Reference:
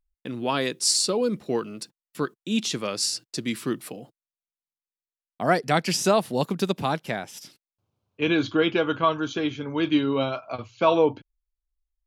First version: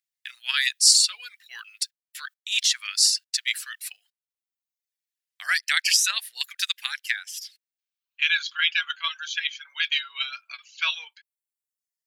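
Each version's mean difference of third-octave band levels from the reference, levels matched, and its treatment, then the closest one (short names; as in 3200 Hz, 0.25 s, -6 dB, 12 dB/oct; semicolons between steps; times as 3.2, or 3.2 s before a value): 16.5 dB: Chebyshev high-pass 1700 Hz, order 4; reverb removal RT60 0.92 s; in parallel at 0 dB: level quantiser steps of 18 dB; on the sum: short-mantissa float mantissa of 6-bit; gain +5.5 dB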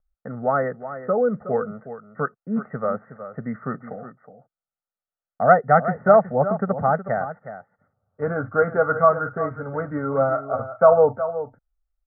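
11.0 dB: steep low-pass 1800 Hz 96 dB/oct; low shelf 220 Hz -5.5 dB; comb 1.5 ms, depth 96%; on a send: echo 0.367 s -12 dB; on the sum: gain +3.5 dB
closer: second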